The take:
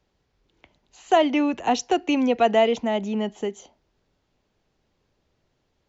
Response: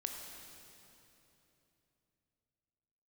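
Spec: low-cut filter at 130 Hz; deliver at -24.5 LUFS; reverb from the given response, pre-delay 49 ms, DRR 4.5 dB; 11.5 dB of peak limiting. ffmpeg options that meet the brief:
-filter_complex "[0:a]highpass=130,alimiter=limit=-19dB:level=0:latency=1,asplit=2[a][b];[1:a]atrim=start_sample=2205,adelay=49[c];[b][c]afir=irnorm=-1:irlink=0,volume=-4dB[d];[a][d]amix=inputs=2:normalize=0,volume=2dB"

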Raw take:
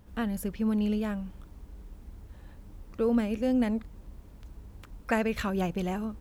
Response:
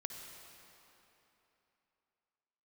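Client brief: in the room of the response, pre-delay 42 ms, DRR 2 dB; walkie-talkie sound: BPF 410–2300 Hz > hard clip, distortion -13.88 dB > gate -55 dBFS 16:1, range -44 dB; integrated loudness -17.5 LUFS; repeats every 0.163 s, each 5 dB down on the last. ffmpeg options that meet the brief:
-filter_complex "[0:a]aecho=1:1:163|326|489|652|815|978|1141:0.562|0.315|0.176|0.0988|0.0553|0.031|0.0173,asplit=2[a][b];[1:a]atrim=start_sample=2205,adelay=42[c];[b][c]afir=irnorm=-1:irlink=0,volume=-0.5dB[d];[a][d]amix=inputs=2:normalize=0,highpass=410,lowpass=2.3k,asoftclip=type=hard:threshold=-25.5dB,agate=range=-44dB:threshold=-55dB:ratio=16,volume=16dB"

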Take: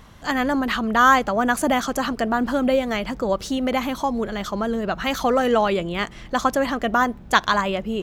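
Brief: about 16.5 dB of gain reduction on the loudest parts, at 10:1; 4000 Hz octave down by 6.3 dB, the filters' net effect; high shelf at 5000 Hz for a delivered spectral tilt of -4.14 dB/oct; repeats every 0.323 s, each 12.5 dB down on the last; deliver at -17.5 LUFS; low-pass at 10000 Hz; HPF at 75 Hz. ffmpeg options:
-af "highpass=75,lowpass=10k,equalizer=f=4k:t=o:g=-6,highshelf=f=5k:g=-6.5,acompressor=threshold=-28dB:ratio=10,aecho=1:1:323|646|969:0.237|0.0569|0.0137,volume=14.5dB"

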